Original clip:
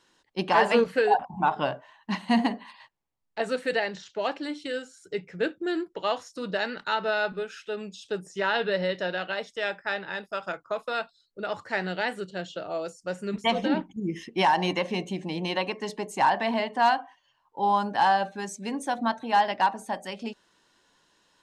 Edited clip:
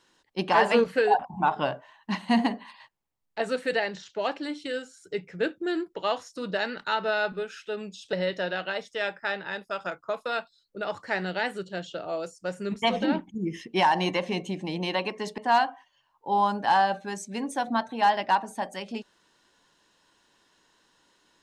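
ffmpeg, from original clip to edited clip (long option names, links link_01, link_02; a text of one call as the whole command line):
ffmpeg -i in.wav -filter_complex "[0:a]asplit=3[link_01][link_02][link_03];[link_01]atrim=end=8.132[link_04];[link_02]atrim=start=8.748:end=16.002[link_05];[link_03]atrim=start=16.688[link_06];[link_04][link_05]acrossfade=duration=0.004:curve1=hsin:curve2=hsin[link_07];[link_07][link_06]acrossfade=duration=0.004:curve1=hsin:curve2=hsin" out.wav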